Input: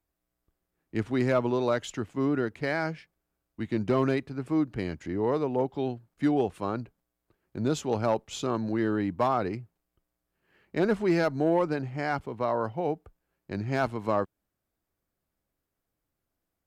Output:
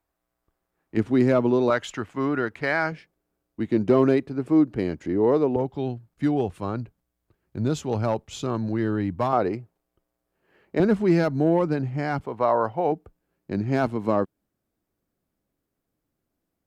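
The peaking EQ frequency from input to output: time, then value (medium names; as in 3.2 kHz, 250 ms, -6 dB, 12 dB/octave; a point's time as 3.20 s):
peaking EQ +8 dB 2.3 oct
950 Hz
from 0.97 s 260 Hz
from 1.70 s 1.4 kHz
from 2.92 s 360 Hz
from 5.56 s 81 Hz
from 9.33 s 530 Hz
from 10.80 s 170 Hz
from 12.25 s 840 Hz
from 12.92 s 250 Hz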